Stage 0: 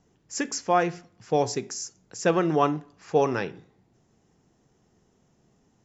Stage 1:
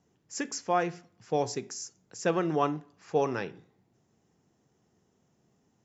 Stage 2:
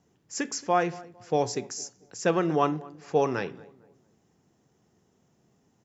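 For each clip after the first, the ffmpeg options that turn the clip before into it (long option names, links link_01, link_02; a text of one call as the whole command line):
ffmpeg -i in.wav -af "highpass=72,volume=-5dB" out.wav
ffmpeg -i in.wav -filter_complex "[0:a]asplit=2[link_01][link_02];[link_02]adelay=226,lowpass=frequency=1200:poles=1,volume=-20dB,asplit=2[link_03][link_04];[link_04]adelay=226,lowpass=frequency=1200:poles=1,volume=0.37,asplit=2[link_05][link_06];[link_06]adelay=226,lowpass=frequency=1200:poles=1,volume=0.37[link_07];[link_01][link_03][link_05][link_07]amix=inputs=4:normalize=0,volume=3dB" out.wav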